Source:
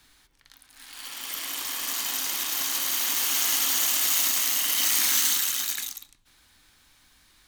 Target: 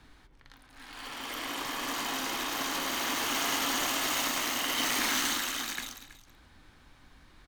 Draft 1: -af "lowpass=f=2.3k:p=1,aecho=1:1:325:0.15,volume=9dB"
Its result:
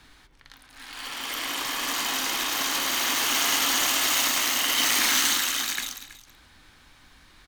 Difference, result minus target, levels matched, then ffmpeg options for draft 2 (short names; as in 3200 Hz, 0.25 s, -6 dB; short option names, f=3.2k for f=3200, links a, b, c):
1000 Hz band -3.5 dB
-af "lowpass=f=810:p=1,aecho=1:1:325:0.15,volume=9dB"